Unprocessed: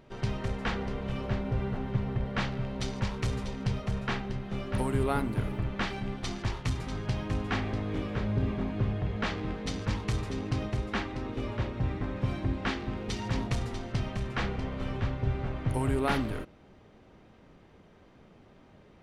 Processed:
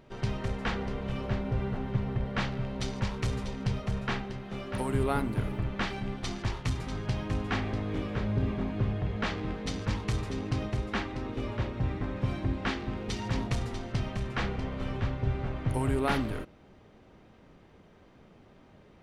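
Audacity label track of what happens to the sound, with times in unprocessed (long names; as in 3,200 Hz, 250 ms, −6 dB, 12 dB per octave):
4.240000	4.890000	low-shelf EQ 160 Hz −7.5 dB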